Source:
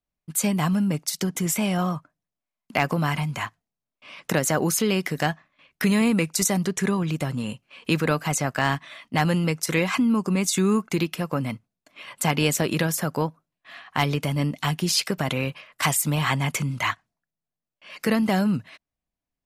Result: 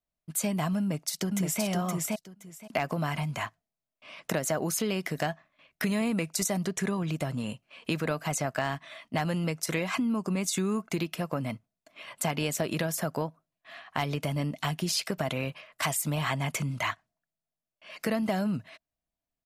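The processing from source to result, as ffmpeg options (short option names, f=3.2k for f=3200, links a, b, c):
-filter_complex "[0:a]asplit=2[a][b];[b]afade=t=in:st=0.79:d=0.01,afade=t=out:st=1.63:d=0.01,aecho=0:1:520|1040|1560:0.749894|0.112484|0.0168726[c];[a][c]amix=inputs=2:normalize=0,equalizer=f=650:w=6.8:g=9,acompressor=threshold=-22dB:ratio=3,volume=-4dB"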